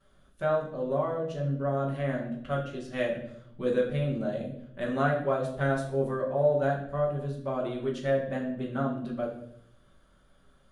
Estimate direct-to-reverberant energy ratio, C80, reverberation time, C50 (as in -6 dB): -10.5 dB, 9.5 dB, 0.70 s, 6.5 dB